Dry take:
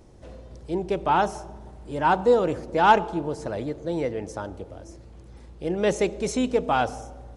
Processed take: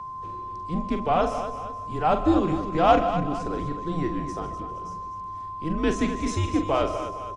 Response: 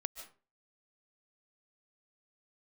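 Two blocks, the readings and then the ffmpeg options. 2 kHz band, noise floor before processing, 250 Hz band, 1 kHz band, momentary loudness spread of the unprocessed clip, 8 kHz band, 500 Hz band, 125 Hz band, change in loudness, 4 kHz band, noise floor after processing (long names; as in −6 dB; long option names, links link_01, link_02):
−5.5 dB, −47 dBFS, +3.0 dB, −1.0 dB, 20 LU, −3.0 dB, −2.0 dB, +4.0 dB, −2.0 dB, −1.5 dB, −36 dBFS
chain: -filter_complex "[0:a]aecho=1:1:42|48|248|468:0.376|0.126|0.299|0.133,aeval=exprs='val(0)+0.0251*sin(2*PI*1200*n/s)':channel_layout=same,afreqshift=-160,asplit=2[link_01][link_02];[1:a]atrim=start_sample=2205,lowpass=8200[link_03];[link_02][link_03]afir=irnorm=-1:irlink=0,volume=3.5dB[link_04];[link_01][link_04]amix=inputs=2:normalize=0,volume=-8.5dB"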